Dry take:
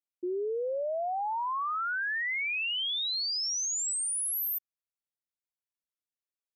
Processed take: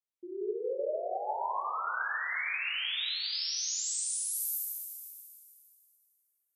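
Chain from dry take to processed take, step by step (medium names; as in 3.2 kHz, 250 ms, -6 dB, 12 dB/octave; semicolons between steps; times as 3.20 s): hum notches 60/120/180/240/300/360 Hz; plate-style reverb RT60 2.6 s, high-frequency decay 0.95×, DRR -5 dB; trim -8.5 dB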